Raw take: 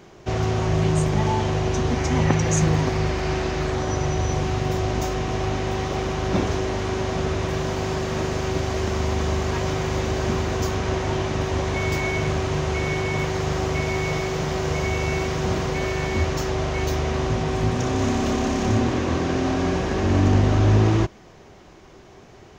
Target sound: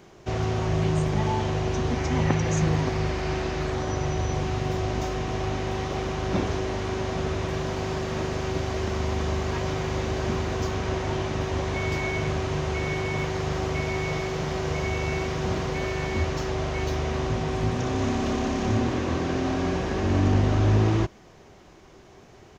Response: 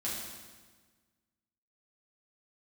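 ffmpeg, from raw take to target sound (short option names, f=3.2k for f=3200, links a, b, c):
-filter_complex "[0:a]highshelf=f=12k:g=6.5,aresample=32000,aresample=44100,acrossover=split=6000[a][b];[b]acompressor=threshold=-50dB:ratio=4:attack=1:release=60[c];[a][c]amix=inputs=2:normalize=0,volume=-3.5dB"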